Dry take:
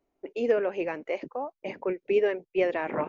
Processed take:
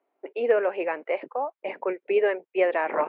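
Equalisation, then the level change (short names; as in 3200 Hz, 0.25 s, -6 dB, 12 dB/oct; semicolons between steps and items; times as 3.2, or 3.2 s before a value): BPF 560–4100 Hz; air absorption 390 m; +8.5 dB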